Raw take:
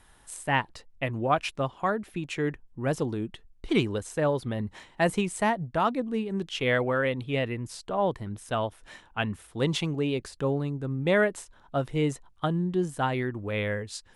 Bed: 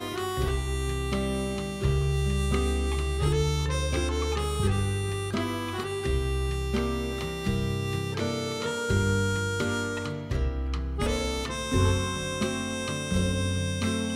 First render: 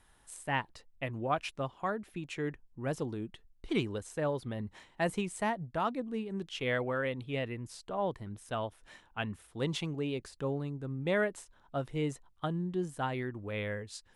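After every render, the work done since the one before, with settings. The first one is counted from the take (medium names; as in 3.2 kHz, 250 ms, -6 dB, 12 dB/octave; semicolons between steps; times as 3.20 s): trim -7 dB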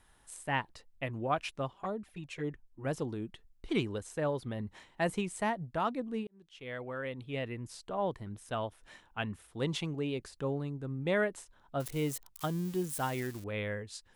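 1.73–2.85 s: touch-sensitive flanger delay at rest 5.8 ms, full sweep at -30 dBFS; 6.27–7.64 s: fade in; 11.80–13.44 s: zero-crossing glitches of -34 dBFS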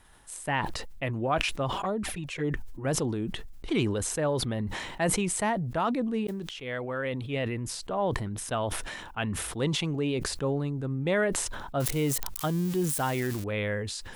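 in parallel at +1 dB: peak limiter -28.5 dBFS, peak gain reduction 11 dB; on the sum: decay stretcher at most 36 dB/s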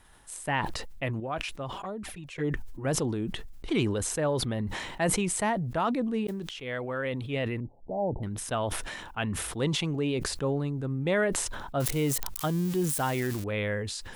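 1.20–2.38 s: gain -6.5 dB; 7.60–8.23 s: rippled Chebyshev low-pass 880 Hz, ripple 3 dB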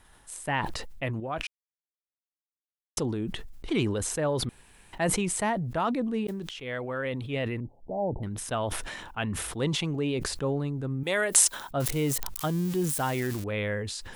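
1.47–2.97 s: mute; 4.49–4.93 s: room tone; 11.03–11.71 s: RIAA curve recording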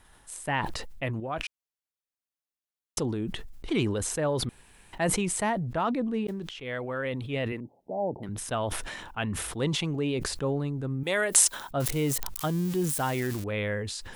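5.64–6.65 s: treble shelf 6.4 kHz -7 dB; 7.52–8.29 s: high-pass 190 Hz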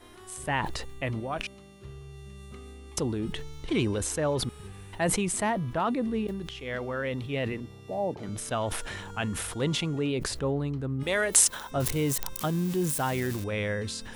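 add bed -19 dB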